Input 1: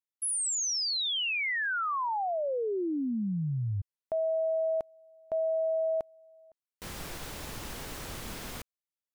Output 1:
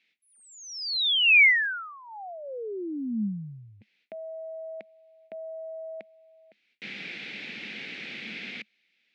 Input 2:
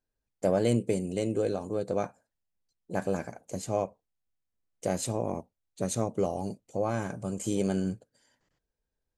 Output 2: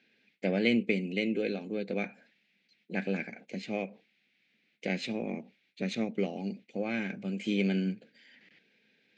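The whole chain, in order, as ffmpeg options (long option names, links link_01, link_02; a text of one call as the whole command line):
ffmpeg -i in.wav -af "highshelf=frequency=1600:width_type=q:width=3:gain=11,areverse,acompressor=mode=upward:threshold=-41dB:ratio=2.5:attack=3.7:release=56:knee=2.83:detection=peak,areverse,aeval=exprs='0.447*(cos(1*acos(clip(val(0)/0.447,-1,1)))-cos(1*PI/2))+0.0316*(cos(3*acos(clip(val(0)/0.447,-1,1)))-cos(3*PI/2))+0.00631*(cos(5*acos(clip(val(0)/0.447,-1,1)))-cos(5*PI/2))+0.00562*(cos(7*acos(clip(val(0)/0.447,-1,1)))-cos(7*PI/2))':channel_layout=same,highpass=frequency=180:width=0.5412,highpass=frequency=180:width=1.3066,equalizer=frequency=210:width_type=q:width=4:gain=8,equalizer=frequency=620:width_type=q:width=4:gain=-5,equalizer=frequency=1000:width_type=q:width=4:gain=-8,equalizer=frequency=1900:width_type=q:width=4:gain=-3,equalizer=frequency=3000:width_type=q:width=4:gain=-5,lowpass=frequency=3400:width=0.5412,lowpass=frequency=3400:width=1.3066" out.wav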